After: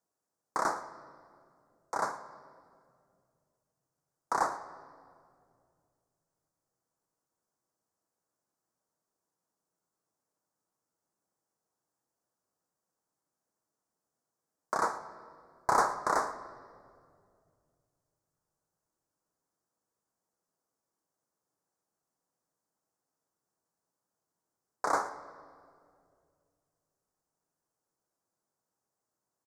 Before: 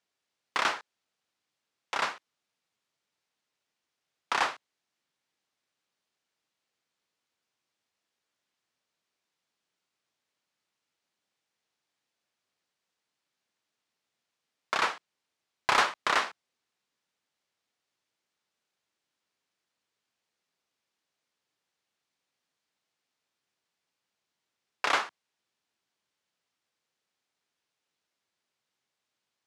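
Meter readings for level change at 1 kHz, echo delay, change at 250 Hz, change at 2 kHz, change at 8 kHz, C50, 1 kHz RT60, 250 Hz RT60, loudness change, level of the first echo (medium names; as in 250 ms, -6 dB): 0.0 dB, 113 ms, +2.0 dB, -8.5 dB, -1.5 dB, 11.5 dB, 2.0 s, 3.0 s, -3.5 dB, -18.5 dB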